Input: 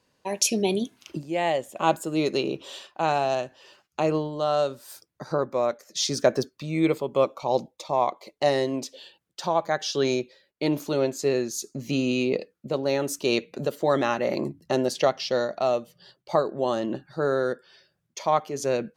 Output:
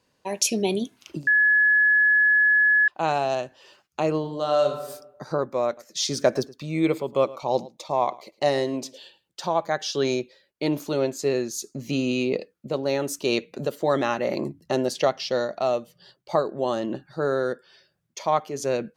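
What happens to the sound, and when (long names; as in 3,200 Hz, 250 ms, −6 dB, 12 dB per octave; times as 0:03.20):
0:01.27–0:02.88: beep over 1,700 Hz −15 dBFS
0:04.18–0:04.83: thrown reverb, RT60 0.88 s, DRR 4.5 dB
0:05.66–0:09.47: single-tap delay 109 ms −20 dB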